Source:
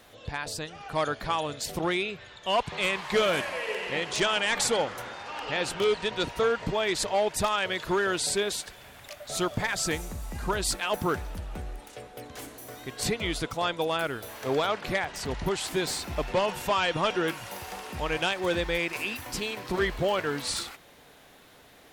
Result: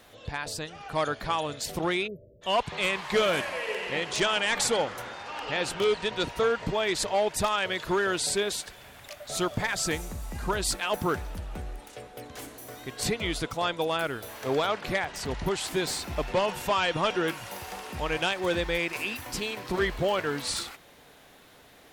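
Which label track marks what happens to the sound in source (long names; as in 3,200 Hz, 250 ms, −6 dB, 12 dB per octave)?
2.070000	2.420000	time-frequency box erased 650–11,000 Hz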